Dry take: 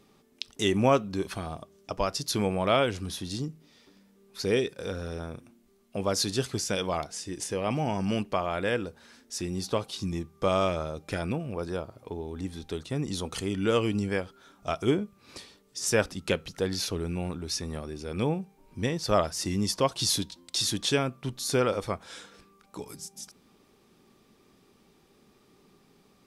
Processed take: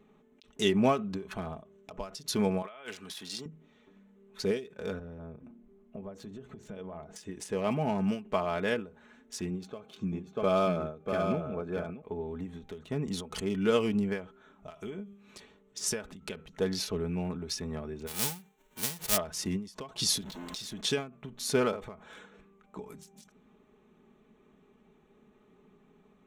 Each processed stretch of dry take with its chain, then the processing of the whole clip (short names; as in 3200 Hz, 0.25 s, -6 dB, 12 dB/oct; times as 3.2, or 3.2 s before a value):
2.62–3.46 HPF 1400 Hz 6 dB/oct + negative-ratio compressor -40 dBFS
4.99–7.16 tilt shelf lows +6 dB, about 1100 Hz + compressor, threshold -38 dBFS + notches 60/120/180/240/300/360/420/480/540 Hz
9.5–12.02 high shelf 5000 Hz -8.5 dB + notch comb 960 Hz + echo 0.64 s -5.5 dB
14.7–15.4 high shelf 2800 Hz +11.5 dB + compressor 16:1, threshold -28 dBFS + resonator 200 Hz, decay 0.94 s, mix 50%
18.06–19.16 spectral whitening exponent 0.1 + bell 1600 Hz -6 dB 2.3 oct
20.21–20.81 zero-crossing step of -35 dBFS + compressor 4:1, threshold -35 dBFS
whole clip: Wiener smoothing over 9 samples; comb 4.7 ms, depth 55%; ending taper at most 150 dB/s; gain -2 dB